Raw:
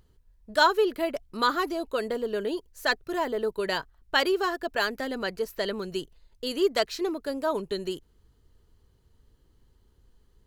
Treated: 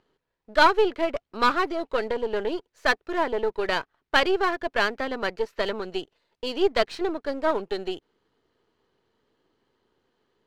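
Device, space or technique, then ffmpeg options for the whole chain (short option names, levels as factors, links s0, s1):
crystal radio: -af "highpass=320,lowpass=3400,aeval=exprs='if(lt(val(0),0),0.447*val(0),val(0))':c=same,volume=2"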